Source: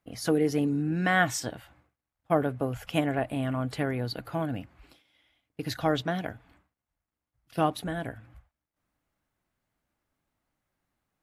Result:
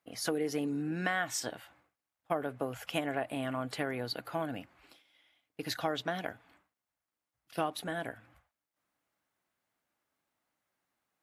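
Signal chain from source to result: HPF 440 Hz 6 dB/oct; compressor 6:1, threshold -28 dBFS, peak gain reduction 9.5 dB

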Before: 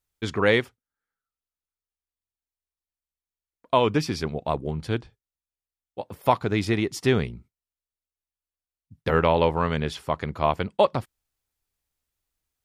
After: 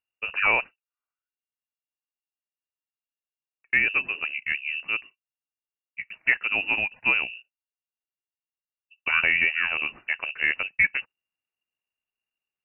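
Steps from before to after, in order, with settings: gate -41 dBFS, range -6 dB; inverted band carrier 2800 Hz; gain -2 dB

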